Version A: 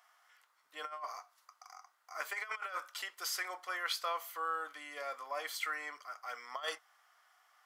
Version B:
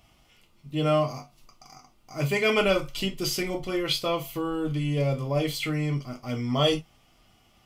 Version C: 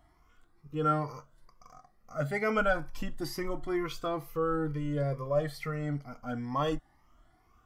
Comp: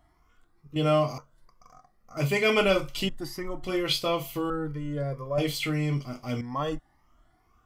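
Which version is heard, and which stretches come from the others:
C
0.76–1.18 from B
2.17–3.09 from B
3.64–4.5 from B
5.38–6.41 from B
not used: A

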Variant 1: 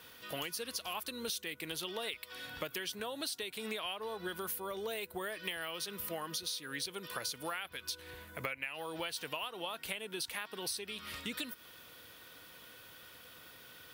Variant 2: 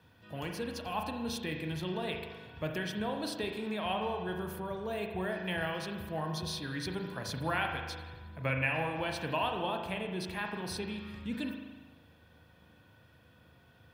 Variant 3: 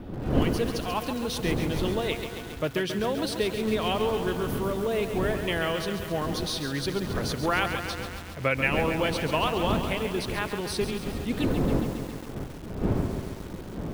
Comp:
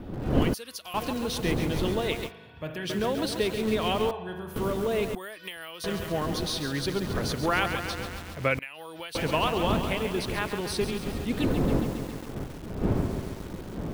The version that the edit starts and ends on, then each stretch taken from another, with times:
3
0.54–0.94 from 1
2.29–2.85 from 2, crossfade 0.06 s
4.11–4.56 from 2
5.15–5.84 from 1
8.59–9.15 from 1

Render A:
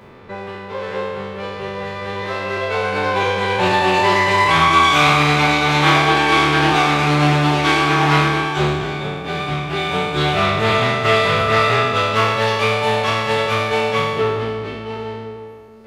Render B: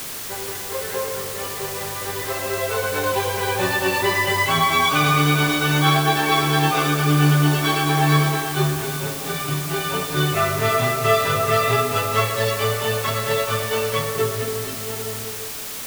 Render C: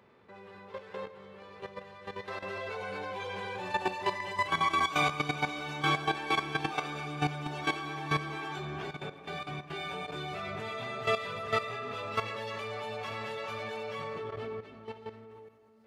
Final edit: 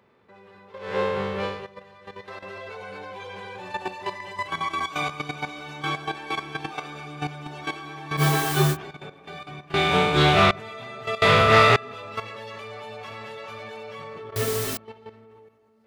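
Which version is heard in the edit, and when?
C
0.89–1.55 from A, crossfade 0.24 s
8.2–8.74 from B, crossfade 0.06 s
9.74–10.51 from A
11.22–11.76 from A
14.36–14.77 from B

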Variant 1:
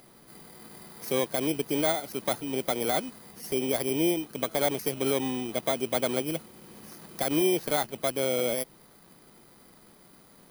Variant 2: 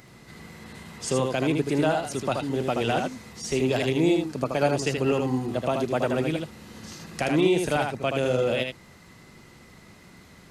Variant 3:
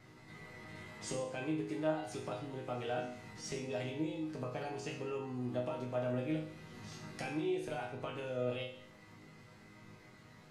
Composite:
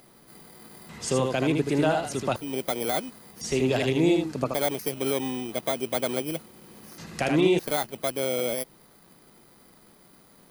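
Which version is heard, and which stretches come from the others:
1
0.89–2.36 from 2
3.41–4.54 from 2
6.98–7.59 from 2
not used: 3

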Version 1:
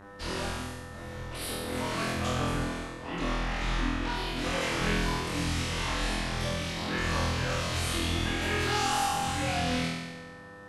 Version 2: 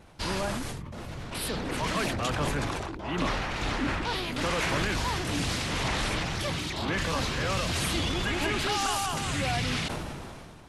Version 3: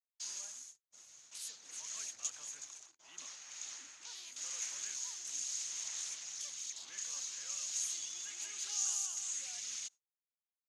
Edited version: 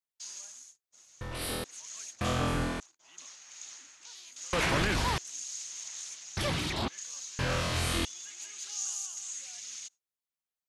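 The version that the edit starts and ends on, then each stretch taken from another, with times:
3
1.21–1.64 from 1
2.21–2.8 from 1
4.53–5.18 from 2
6.37–6.88 from 2
7.39–8.05 from 1

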